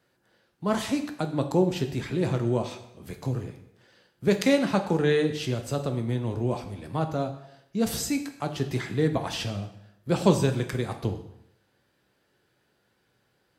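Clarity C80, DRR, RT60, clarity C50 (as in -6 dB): 12.5 dB, 6.0 dB, 0.75 s, 10.5 dB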